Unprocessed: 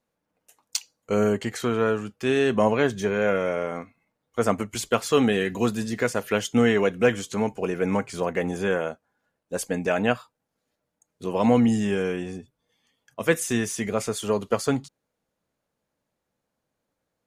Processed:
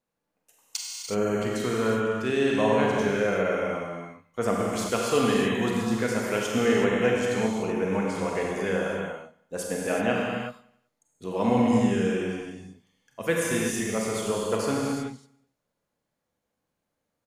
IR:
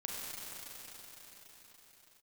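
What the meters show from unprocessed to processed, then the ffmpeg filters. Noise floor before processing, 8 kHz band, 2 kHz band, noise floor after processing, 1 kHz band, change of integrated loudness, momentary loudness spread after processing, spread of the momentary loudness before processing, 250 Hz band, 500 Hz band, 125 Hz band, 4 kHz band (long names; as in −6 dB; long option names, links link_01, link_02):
−81 dBFS, −1.0 dB, −1.0 dB, −82 dBFS, −0.5 dB, −1.5 dB, 12 LU, 11 LU, −1.0 dB, −1.5 dB, −1.5 dB, −1.0 dB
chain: -filter_complex "[0:a]aecho=1:1:95|190|285|380:0.0794|0.0405|0.0207|0.0105[link_01];[1:a]atrim=start_sample=2205,afade=type=out:start_time=0.43:duration=0.01,atrim=end_sample=19404[link_02];[link_01][link_02]afir=irnorm=-1:irlink=0,volume=-1.5dB"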